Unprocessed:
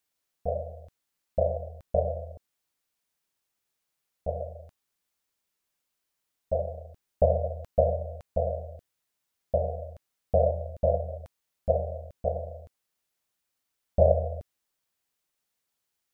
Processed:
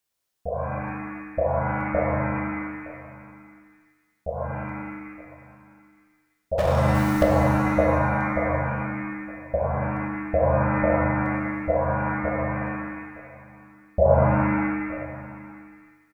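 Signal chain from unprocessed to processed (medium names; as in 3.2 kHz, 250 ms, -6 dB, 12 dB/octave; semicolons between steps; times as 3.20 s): delay 914 ms -19 dB; 6.58–7.23 s: power-law waveshaper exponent 0.5; pitch-shifted reverb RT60 1.3 s, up +7 st, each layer -2 dB, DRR 2 dB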